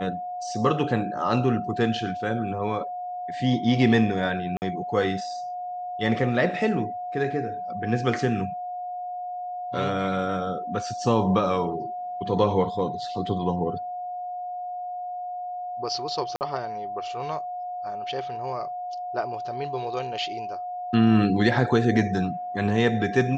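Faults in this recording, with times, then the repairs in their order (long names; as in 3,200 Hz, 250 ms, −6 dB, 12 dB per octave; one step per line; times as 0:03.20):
whistle 720 Hz −30 dBFS
0:04.57–0:04.62: drop-out 49 ms
0:16.36–0:16.41: drop-out 49 ms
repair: notch filter 720 Hz, Q 30
repair the gap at 0:04.57, 49 ms
repair the gap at 0:16.36, 49 ms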